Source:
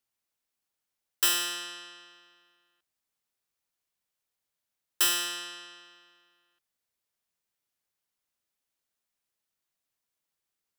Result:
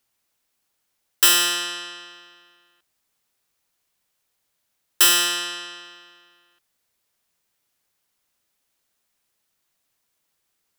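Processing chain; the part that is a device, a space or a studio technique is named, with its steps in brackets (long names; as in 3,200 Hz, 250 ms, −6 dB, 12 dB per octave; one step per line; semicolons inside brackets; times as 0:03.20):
parallel distortion (in parallel at −4 dB: hard clipping −26.5 dBFS, distortion −7 dB)
on the sum: level +7 dB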